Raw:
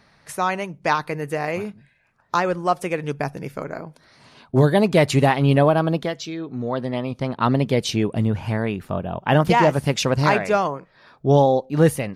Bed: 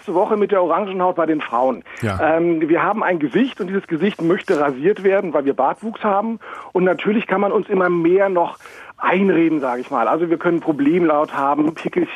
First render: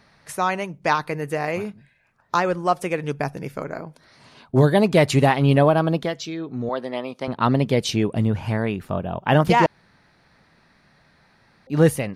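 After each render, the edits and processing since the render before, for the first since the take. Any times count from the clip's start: 6.69–7.28 s: high-pass 330 Hz; 9.66–11.67 s: room tone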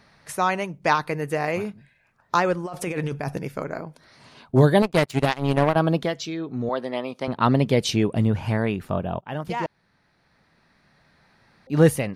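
2.65–3.38 s: compressor with a negative ratio -28 dBFS; 4.82–5.76 s: power-law waveshaper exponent 2; 9.21–11.78 s: fade in, from -16.5 dB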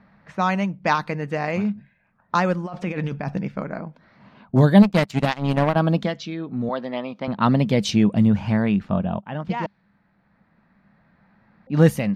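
level-controlled noise filter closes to 1.8 kHz, open at -16.5 dBFS; graphic EQ with 31 bands 200 Hz +12 dB, 400 Hz -6 dB, 10 kHz -11 dB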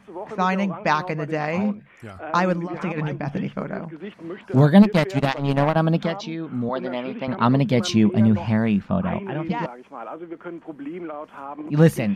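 add bed -17.5 dB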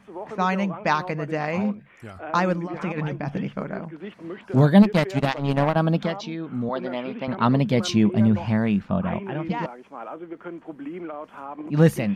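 trim -1.5 dB

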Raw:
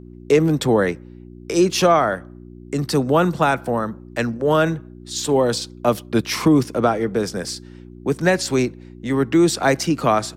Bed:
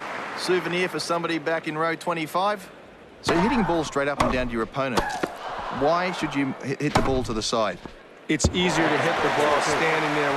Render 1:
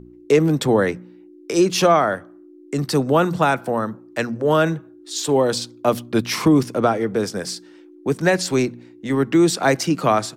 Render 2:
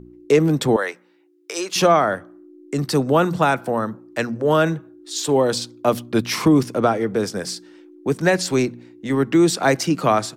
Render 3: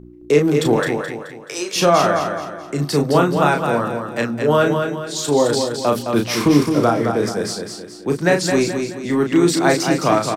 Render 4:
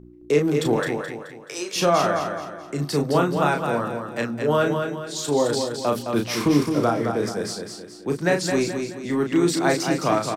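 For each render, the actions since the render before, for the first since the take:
de-hum 60 Hz, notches 4
0.76–1.76 s: high-pass 710 Hz
doubling 34 ms -5 dB; feedback delay 214 ms, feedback 41%, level -6 dB
trim -5 dB

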